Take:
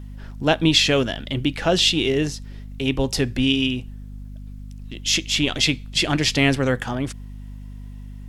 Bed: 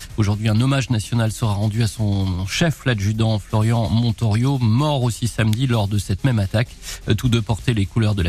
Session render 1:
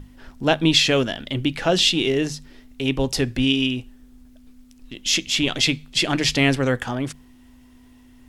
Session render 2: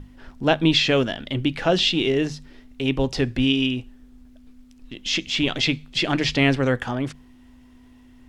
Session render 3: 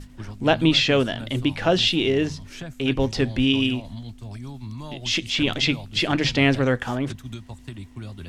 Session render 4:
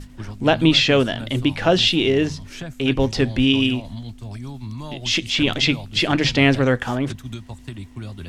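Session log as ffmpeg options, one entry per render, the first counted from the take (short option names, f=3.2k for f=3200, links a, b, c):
-af "bandreject=f=50:t=h:w=6,bandreject=f=100:t=h:w=6,bandreject=f=150:t=h:w=6,bandreject=f=200:t=h:w=6"
-filter_complex "[0:a]acrossover=split=6100[a][b];[b]acompressor=threshold=-42dB:ratio=4:attack=1:release=60[c];[a][c]amix=inputs=2:normalize=0,highshelf=f=6.5k:g=-9.5"
-filter_complex "[1:a]volume=-18.5dB[a];[0:a][a]amix=inputs=2:normalize=0"
-af "volume=3dB,alimiter=limit=-3dB:level=0:latency=1"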